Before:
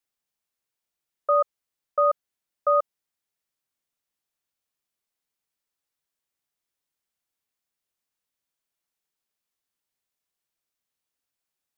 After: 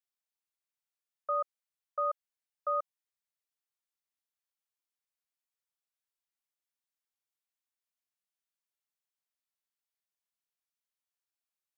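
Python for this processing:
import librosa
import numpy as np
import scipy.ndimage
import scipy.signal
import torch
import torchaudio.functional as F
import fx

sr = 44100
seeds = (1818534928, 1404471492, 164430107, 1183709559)

y = scipy.signal.sosfilt(scipy.signal.butter(2, 660.0, 'highpass', fs=sr, output='sos'), x)
y = y * 10.0 ** (-9.0 / 20.0)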